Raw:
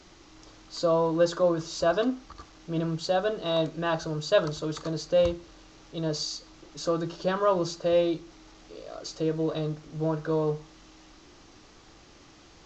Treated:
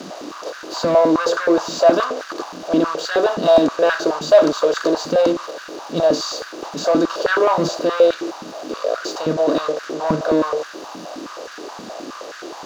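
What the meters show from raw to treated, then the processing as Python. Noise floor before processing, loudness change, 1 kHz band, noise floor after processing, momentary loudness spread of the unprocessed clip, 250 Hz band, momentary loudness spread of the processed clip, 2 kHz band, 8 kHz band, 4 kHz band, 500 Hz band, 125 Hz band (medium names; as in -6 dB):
-54 dBFS, +9.5 dB, +11.5 dB, -36 dBFS, 15 LU, +10.0 dB, 18 LU, +13.0 dB, no reading, +8.5 dB, +10.5 dB, 0.0 dB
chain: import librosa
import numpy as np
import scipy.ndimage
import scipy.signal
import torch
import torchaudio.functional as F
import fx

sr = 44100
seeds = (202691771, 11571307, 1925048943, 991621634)

p1 = fx.bin_compress(x, sr, power=0.6)
p2 = fx.high_shelf(p1, sr, hz=6400.0, db=3.0)
p3 = fx.leveller(p2, sr, passes=2)
p4 = fx.level_steps(p3, sr, step_db=10)
p5 = p3 + (p4 * librosa.db_to_amplitude(-2.5))
p6 = fx.filter_held_highpass(p5, sr, hz=9.5, low_hz=210.0, high_hz=1500.0)
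y = p6 * librosa.db_to_amplitude(-7.0)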